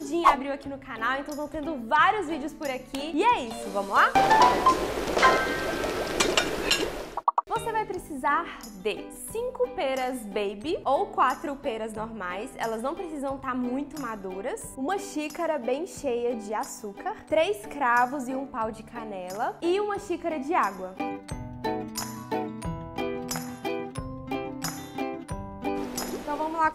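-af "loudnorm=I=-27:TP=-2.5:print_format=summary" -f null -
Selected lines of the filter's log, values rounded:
Input Integrated:    -28.1 LUFS
Input True Peak:      -6.1 dBTP
Input LRA:             9.2 LU
Input Threshold:     -38.1 LUFS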